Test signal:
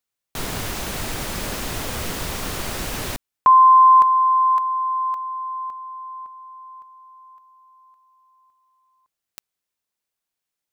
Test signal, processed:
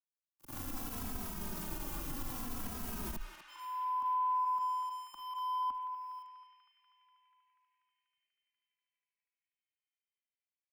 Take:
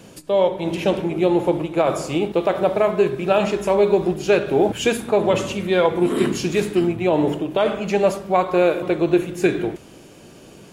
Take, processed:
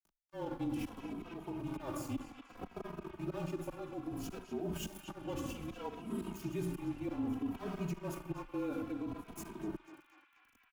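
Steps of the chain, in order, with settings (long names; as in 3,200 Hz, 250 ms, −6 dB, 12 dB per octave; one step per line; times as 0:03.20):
volume swells 424 ms
fake sidechain pumping 135 BPM, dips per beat 1, −7 dB, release 68 ms
four-comb reverb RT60 0.49 s, combs from 31 ms, DRR 12.5 dB
dead-zone distortion −35 dBFS
frequency shifter −31 Hz
reversed playback
downward compressor 10 to 1, threshold −32 dBFS
reversed playback
octave-band graphic EQ 125/250/500/2,000/4,000/8,000 Hz −7/+5/−12/−12/−10/−7 dB
on a send: feedback echo with a band-pass in the loop 243 ms, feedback 84%, band-pass 2,200 Hz, level −9 dB
on the sum: brickwall limiter −35.5 dBFS
barber-pole flanger 2.8 ms −0.62 Hz
level +7.5 dB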